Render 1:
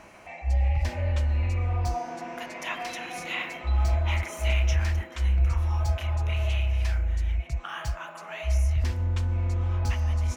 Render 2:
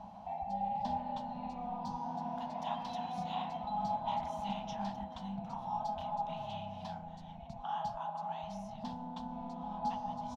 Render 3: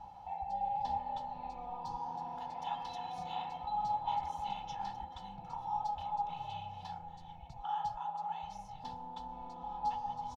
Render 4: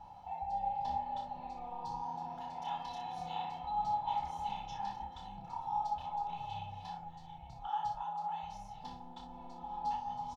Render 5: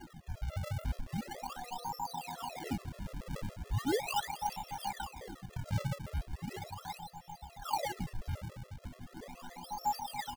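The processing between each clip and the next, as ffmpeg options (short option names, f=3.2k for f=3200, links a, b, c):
-af "afftfilt=real='re*lt(hypot(re,im),0.126)':imag='im*lt(hypot(re,im),0.126)':win_size=1024:overlap=0.75,firequalizer=gain_entry='entry(140,0);entry(200,11);entry(360,-22);entry(810,12);entry(1200,-11);entry(2200,-24);entry(3400,-4);entry(6600,-18);entry(9600,-23)':delay=0.05:min_phase=1,volume=-2dB"
-af "aecho=1:1:2.3:1,volume=-4dB"
-af "aecho=1:1:29|60:0.596|0.398,volume=-2dB"
-af "acrusher=samples=35:mix=1:aa=0.000001:lfo=1:lforange=56:lforate=0.38,afftfilt=real='re*gt(sin(2*PI*7*pts/sr)*(1-2*mod(floor(b*sr/1024/350),2)),0)':imag='im*gt(sin(2*PI*7*pts/sr)*(1-2*mod(floor(b*sr/1024/350),2)),0)':win_size=1024:overlap=0.75,volume=4dB"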